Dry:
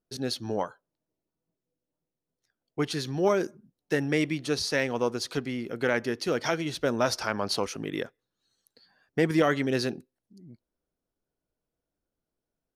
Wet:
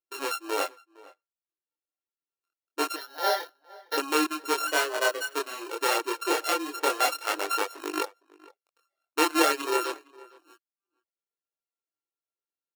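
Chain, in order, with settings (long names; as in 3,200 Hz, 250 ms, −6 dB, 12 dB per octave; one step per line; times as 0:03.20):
samples sorted by size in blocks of 32 samples
reverb reduction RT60 0.85 s
noise gate −49 dBFS, range −14 dB
multi-voice chorus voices 2, 0.25 Hz, delay 24 ms, depth 4.6 ms
0:02.96–0:03.98: phaser with its sweep stopped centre 1,700 Hz, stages 8
0:04.67–0:05.34: frequency shifter +150 Hz
linear-phase brick-wall high-pass 290 Hz
slap from a distant wall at 79 metres, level −22 dB
level +5.5 dB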